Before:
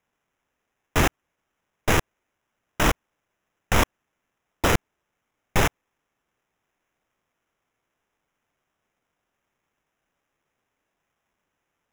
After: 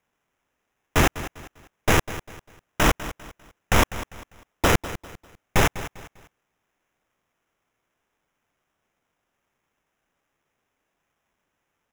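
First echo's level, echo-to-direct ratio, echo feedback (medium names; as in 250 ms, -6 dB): -14.5 dB, -14.0 dB, 33%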